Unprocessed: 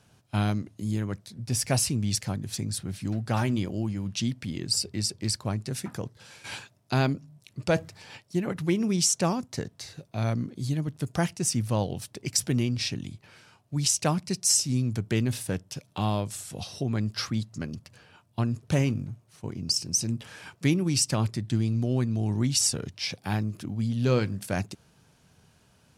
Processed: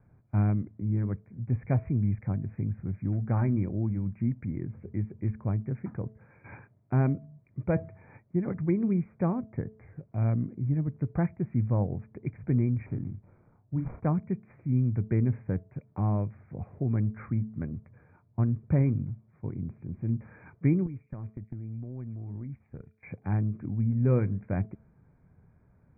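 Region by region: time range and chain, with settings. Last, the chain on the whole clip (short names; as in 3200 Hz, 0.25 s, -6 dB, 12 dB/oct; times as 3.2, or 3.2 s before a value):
12.86–14.07 median filter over 25 samples + bell 1400 Hz +2.5 dB 0.27 oct + doubler 31 ms -5.5 dB
20.86–23.03 gate -32 dBFS, range -19 dB + compressor 16:1, threshold -34 dBFS + delay with a stepping band-pass 0.107 s, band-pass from 3300 Hz, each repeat 0.7 oct, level -3.5 dB
whole clip: Chebyshev low-pass 2400 Hz, order 10; tilt -3 dB/oct; de-hum 217.6 Hz, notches 3; gain -6.5 dB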